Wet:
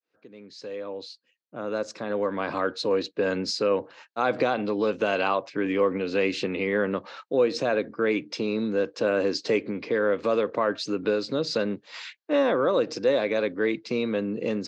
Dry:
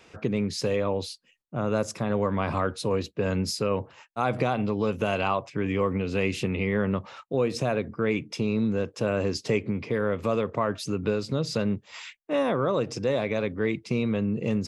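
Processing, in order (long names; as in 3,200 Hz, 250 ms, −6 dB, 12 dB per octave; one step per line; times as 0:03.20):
fade in at the beginning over 3.16 s
loudspeaker in its box 250–6,700 Hz, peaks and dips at 300 Hz +6 dB, 510 Hz +5 dB, 1,600 Hz +6 dB, 4,200 Hz +8 dB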